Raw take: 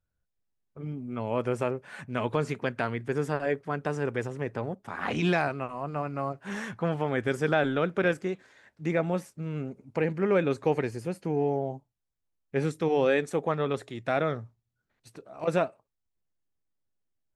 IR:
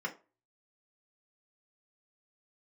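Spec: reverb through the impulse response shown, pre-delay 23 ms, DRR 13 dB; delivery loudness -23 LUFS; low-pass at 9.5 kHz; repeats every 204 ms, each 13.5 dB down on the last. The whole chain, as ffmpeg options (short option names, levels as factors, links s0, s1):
-filter_complex "[0:a]lowpass=9500,aecho=1:1:204|408:0.211|0.0444,asplit=2[s0][s1];[1:a]atrim=start_sample=2205,adelay=23[s2];[s1][s2]afir=irnorm=-1:irlink=0,volume=0.141[s3];[s0][s3]amix=inputs=2:normalize=0,volume=2.11"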